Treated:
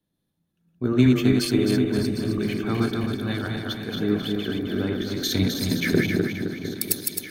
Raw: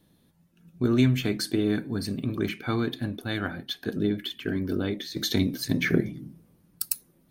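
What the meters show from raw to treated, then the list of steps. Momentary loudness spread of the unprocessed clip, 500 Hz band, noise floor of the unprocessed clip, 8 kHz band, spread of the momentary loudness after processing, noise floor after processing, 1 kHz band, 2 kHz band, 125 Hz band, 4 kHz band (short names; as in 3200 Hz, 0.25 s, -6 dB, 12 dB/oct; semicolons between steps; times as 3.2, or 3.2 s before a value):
9 LU, +4.5 dB, -64 dBFS, +5.0 dB, 9 LU, -77 dBFS, +3.0 dB, +3.0 dB, +3.5 dB, +3.5 dB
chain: regenerating reverse delay 0.132 s, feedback 75%, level -3 dB; echo with dull and thin repeats by turns 0.706 s, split 1000 Hz, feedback 65%, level -8.5 dB; three-band expander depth 40%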